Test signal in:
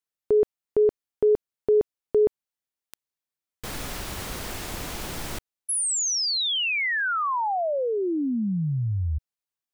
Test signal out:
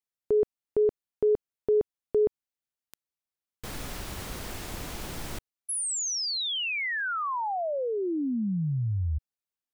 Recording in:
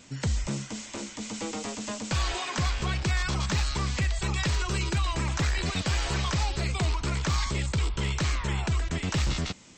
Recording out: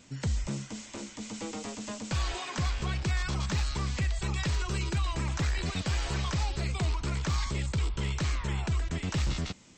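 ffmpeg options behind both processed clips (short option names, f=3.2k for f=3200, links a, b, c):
-af "lowshelf=f=360:g=3,volume=-5dB"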